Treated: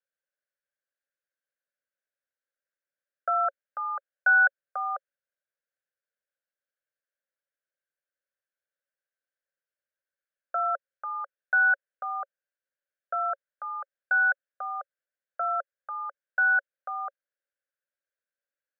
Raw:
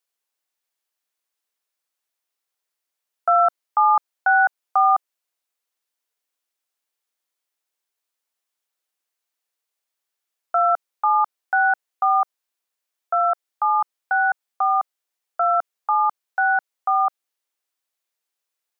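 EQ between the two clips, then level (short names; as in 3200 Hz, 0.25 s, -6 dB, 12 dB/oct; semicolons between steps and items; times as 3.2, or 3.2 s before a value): double band-pass 930 Hz, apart 1.5 oct; +2.5 dB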